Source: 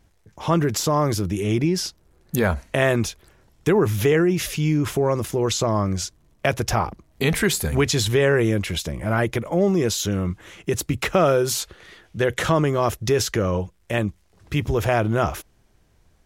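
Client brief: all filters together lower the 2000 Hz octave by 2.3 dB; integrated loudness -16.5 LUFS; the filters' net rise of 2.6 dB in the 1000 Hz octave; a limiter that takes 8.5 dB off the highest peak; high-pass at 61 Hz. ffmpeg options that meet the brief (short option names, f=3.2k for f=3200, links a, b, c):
-af "highpass=61,equalizer=f=1k:t=o:g=4.5,equalizer=f=2k:t=o:g=-4.5,volume=7.5dB,alimiter=limit=-5dB:level=0:latency=1"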